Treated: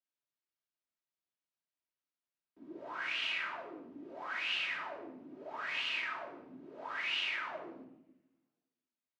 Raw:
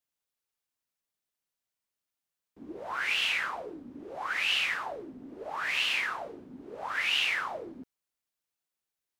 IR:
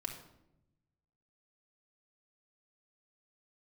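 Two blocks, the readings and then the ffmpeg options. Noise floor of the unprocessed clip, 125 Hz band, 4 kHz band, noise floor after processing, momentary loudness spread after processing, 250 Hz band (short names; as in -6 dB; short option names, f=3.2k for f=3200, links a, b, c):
under -85 dBFS, n/a, -7.0 dB, under -85 dBFS, 17 LU, -5.0 dB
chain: -filter_complex "[0:a]highpass=160,lowpass=4.8k[a];[1:a]atrim=start_sample=2205[b];[a][b]afir=irnorm=-1:irlink=0,volume=-6dB"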